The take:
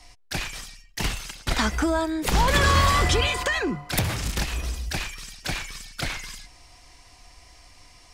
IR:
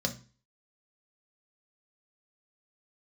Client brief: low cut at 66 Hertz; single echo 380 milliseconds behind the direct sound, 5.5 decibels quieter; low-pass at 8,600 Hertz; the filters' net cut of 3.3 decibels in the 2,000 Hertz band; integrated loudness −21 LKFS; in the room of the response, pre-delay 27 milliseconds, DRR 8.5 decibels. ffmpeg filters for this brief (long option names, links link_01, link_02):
-filter_complex "[0:a]highpass=66,lowpass=8600,equalizer=frequency=2000:width_type=o:gain=-4,aecho=1:1:380:0.531,asplit=2[link_01][link_02];[1:a]atrim=start_sample=2205,adelay=27[link_03];[link_02][link_03]afir=irnorm=-1:irlink=0,volume=-14dB[link_04];[link_01][link_04]amix=inputs=2:normalize=0,volume=3dB"